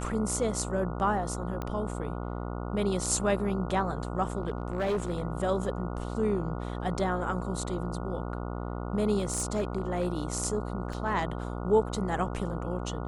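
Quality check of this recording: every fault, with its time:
buzz 60 Hz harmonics 24 -35 dBFS
1.62 s: pop -21 dBFS
4.38–5.23 s: clipped -25 dBFS
9.18–10.12 s: clipped -23 dBFS
10.93 s: dropout 3.1 ms

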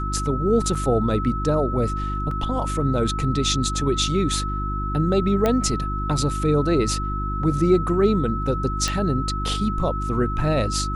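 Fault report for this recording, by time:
hum 50 Hz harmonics 7 -27 dBFS
whine 1.3 kHz -28 dBFS
0.75 s: dropout 4.7 ms
2.31 s: dropout 3 ms
5.46 s: pop -8 dBFS
8.88 s: pop

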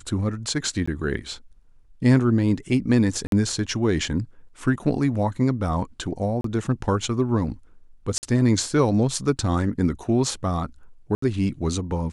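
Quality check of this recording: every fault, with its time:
0.86–0.88 s: dropout 15 ms
3.27–3.32 s: dropout 52 ms
6.41–6.44 s: dropout 33 ms
8.18–8.23 s: dropout 49 ms
11.15–11.22 s: dropout 74 ms

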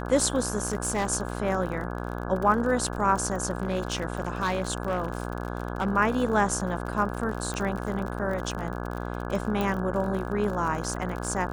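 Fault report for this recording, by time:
buzz 60 Hz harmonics 28 -33 dBFS
crackle 47 per s -32 dBFS
0.67–1.08 s: clipped -21 dBFS
3.55–5.87 s: clipped -21 dBFS
7.54 s: pop -19 dBFS
9.61 s: pop -15 dBFS

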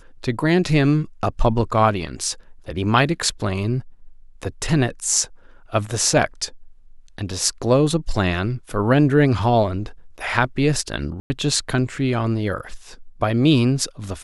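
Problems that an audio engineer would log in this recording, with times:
11.20–11.30 s: dropout 100 ms

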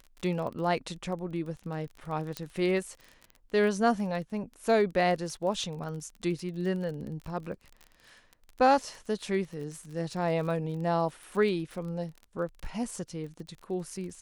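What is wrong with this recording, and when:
crackle 25 per s -37 dBFS
2.37 s: pop -18 dBFS

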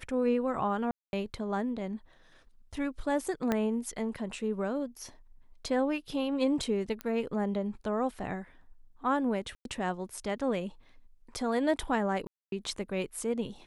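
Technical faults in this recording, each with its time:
0.91–1.13 s: dropout 221 ms
3.52 s: pop -15 dBFS
7.01 s: pop -21 dBFS
9.55–9.65 s: dropout 102 ms
12.27–12.52 s: dropout 252 ms

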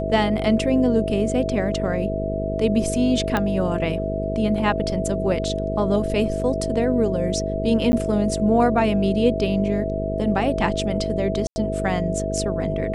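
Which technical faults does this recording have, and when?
buzz 50 Hz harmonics 10 -27 dBFS
whine 650 Hz -26 dBFS
3.37 s: pop -8 dBFS
7.92–7.93 s: dropout 10 ms
11.47–11.56 s: dropout 90 ms

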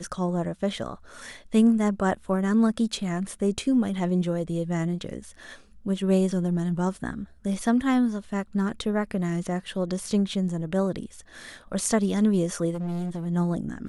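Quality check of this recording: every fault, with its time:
12.74–13.27 s: clipped -27 dBFS

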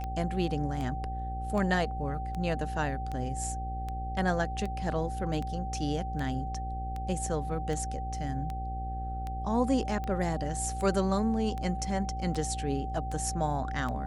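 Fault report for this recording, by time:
buzz 60 Hz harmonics 14 -36 dBFS
tick 78 rpm -24 dBFS
whine 770 Hz -37 dBFS

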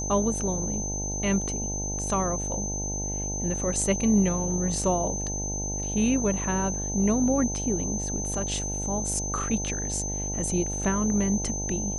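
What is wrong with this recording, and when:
buzz 50 Hz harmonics 18 -33 dBFS
whine 6.2 kHz -31 dBFS

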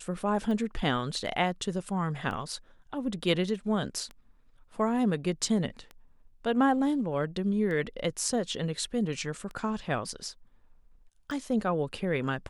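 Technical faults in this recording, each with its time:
tick 33 1/3 rpm -27 dBFS

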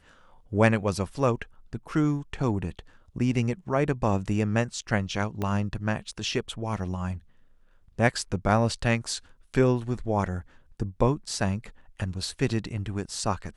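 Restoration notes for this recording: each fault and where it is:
5.42 s: pop -17 dBFS

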